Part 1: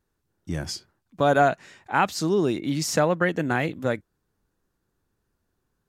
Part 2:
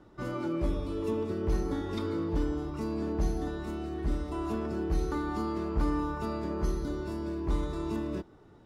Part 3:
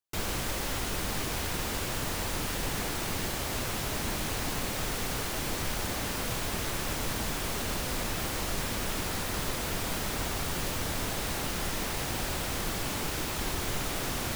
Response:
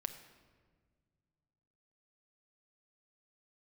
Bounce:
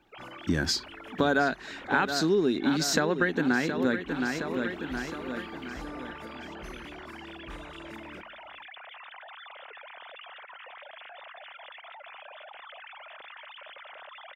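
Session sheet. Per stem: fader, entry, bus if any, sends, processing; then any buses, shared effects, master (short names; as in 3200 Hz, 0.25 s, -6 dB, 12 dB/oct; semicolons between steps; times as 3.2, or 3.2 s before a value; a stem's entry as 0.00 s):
-0.5 dB, 0.00 s, no send, echo send -12 dB, thirty-one-band EQ 125 Hz -9 dB, 250 Hz +10 dB, 400 Hz +6 dB, 630 Hz -5 dB, 1600 Hz +9 dB, 4000 Hz +11 dB, 10000 Hz -10 dB; AGC gain up to 11 dB
-13.0 dB, 0.00 s, send -5 dB, no echo send, tilt +1.5 dB/oct; auto duck -10 dB, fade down 0.25 s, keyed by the first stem
-18.5 dB, 0.00 s, no send, echo send -18 dB, sine-wave speech; fast leveller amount 100%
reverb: on, RT60 1.7 s, pre-delay 6 ms
echo: feedback echo 0.718 s, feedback 45%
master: compressor 3:1, threshold -25 dBFS, peak gain reduction 12.5 dB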